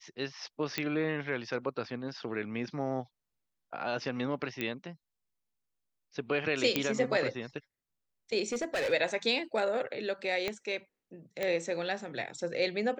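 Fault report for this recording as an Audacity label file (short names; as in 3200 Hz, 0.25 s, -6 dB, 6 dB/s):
0.780000	0.780000	pop -16 dBFS
4.610000	4.610000	pop -19 dBFS
6.760000	6.760000	pop -11 dBFS
8.520000	8.930000	clipped -28 dBFS
10.480000	10.480000	pop -18 dBFS
11.430000	11.430000	pop -18 dBFS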